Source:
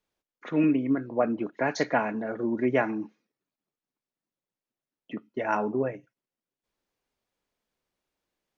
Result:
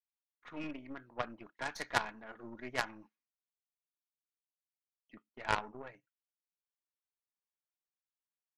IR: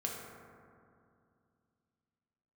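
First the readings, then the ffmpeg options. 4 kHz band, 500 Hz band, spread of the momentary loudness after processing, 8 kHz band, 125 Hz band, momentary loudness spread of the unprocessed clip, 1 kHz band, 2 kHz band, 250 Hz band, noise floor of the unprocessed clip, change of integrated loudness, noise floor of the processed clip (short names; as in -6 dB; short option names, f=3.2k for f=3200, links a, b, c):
+1.0 dB, -17.0 dB, 16 LU, n/a, -14.5 dB, 17 LU, -8.0 dB, -6.0 dB, -21.0 dB, under -85 dBFS, -12.0 dB, under -85 dBFS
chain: -af "lowshelf=f=730:t=q:w=1.5:g=-8,aeval=exprs='0.251*(cos(1*acos(clip(val(0)/0.251,-1,1)))-cos(1*PI/2))+0.0447*(cos(2*acos(clip(val(0)/0.251,-1,1)))-cos(2*PI/2))+0.0631*(cos(3*acos(clip(val(0)/0.251,-1,1)))-cos(3*PI/2))+0.0251*(cos(6*acos(clip(val(0)/0.251,-1,1)))-cos(6*PI/2))+0.0251*(cos(8*acos(clip(val(0)/0.251,-1,1)))-cos(8*PI/2))':c=same,adynamicequalizer=threshold=0.00178:dfrequency=280:dqfactor=1.8:tfrequency=280:tqfactor=1.8:attack=5:release=100:ratio=0.375:range=2:mode=cutabove:tftype=bell,agate=range=-9dB:threshold=-58dB:ratio=16:detection=peak"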